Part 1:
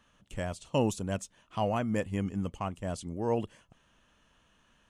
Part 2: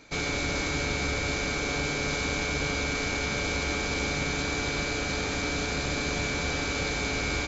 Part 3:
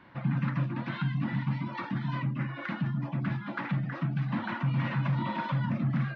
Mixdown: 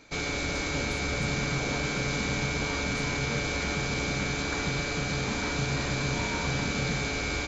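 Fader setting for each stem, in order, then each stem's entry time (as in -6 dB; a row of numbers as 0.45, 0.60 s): -13.0, -1.5, -4.5 dB; 0.00, 0.00, 0.95 s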